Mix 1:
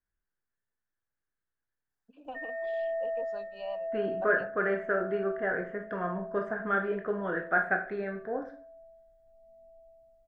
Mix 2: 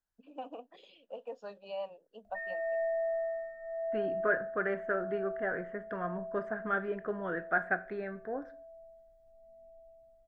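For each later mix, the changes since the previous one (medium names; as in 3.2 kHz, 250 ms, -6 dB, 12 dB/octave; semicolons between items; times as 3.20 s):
first voice: entry -1.90 s; second voice: send -11.5 dB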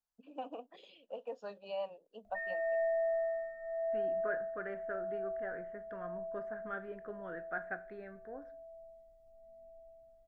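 second voice -10.0 dB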